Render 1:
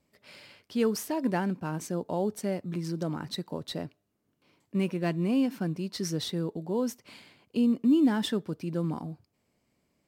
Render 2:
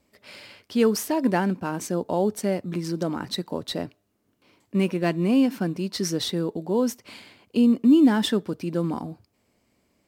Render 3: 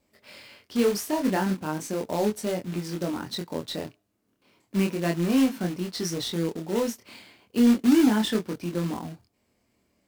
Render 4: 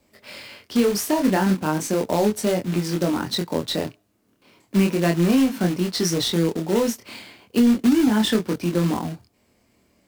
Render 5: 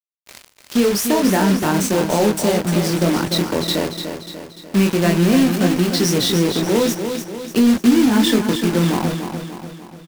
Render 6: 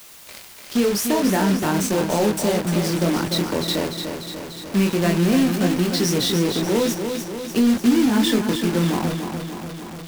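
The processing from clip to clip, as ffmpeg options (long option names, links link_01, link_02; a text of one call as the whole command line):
ffmpeg -i in.wav -af "equalizer=frequency=150:width=5.6:gain=-9.5,volume=6.5dB" out.wav
ffmpeg -i in.wav -af "acrusher=bits=3:mode=log:mix=0:aa=0.000001,flanger=delay=22.5:depth=3.9:speed=0.35" out.wav
ffmpeg -i in.wav -filter_complex "[0:a]acrossover=split=150[link_01][link_02];[link_02]acompressor=threshold=-24dB:ratio=6[link_03];[link_01][link_03]amix=inputs=2:normalize=0,volume=8dB" out.wav
ffmpeg -i in.wav -filter_complex "[0:a]asplit=2[link_01][link_02];[link_02]alimiter=limit=-19.5dB:level=0:latency=1,volume=0.5dB[link_03];[link_01][link_03]amix=inputs=2:normalize=0,acrusher=bits=3:mix=0:aa=0.5,aecho=1:1:295|590|885|1180|1475|1770:0.422|0.215|0.11|0.0559|0.0285|0.0145" out.wav
ffmpeg -i in.wav -af "aeval=exprs='val(0)+0.5*0.0398*sgn(val(0))':channel_layout=same,volume=-4dB" out.wav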